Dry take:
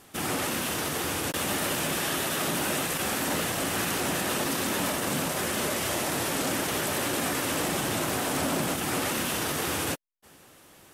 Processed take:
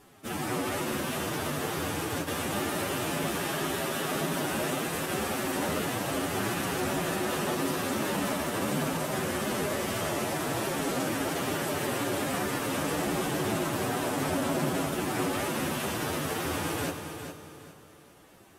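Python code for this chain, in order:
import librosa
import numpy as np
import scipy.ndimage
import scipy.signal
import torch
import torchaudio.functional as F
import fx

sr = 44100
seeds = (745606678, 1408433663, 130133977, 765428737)

y = fx.high_shelf(x, sr, hz=2000.0, db=-7.0)
y = fx.stretch_vocoder(y, sr, factor=1.7)
y = fx.echo_feedback(y, sr, ms=409, feedback_pct=29, wet_db=-9)
y = fx.rev_fdn(y, sr, rt60_s=2.8, lf_ratio=1.0, hf_ratio=0.85, size_ms=15.0, drr_db=10.0)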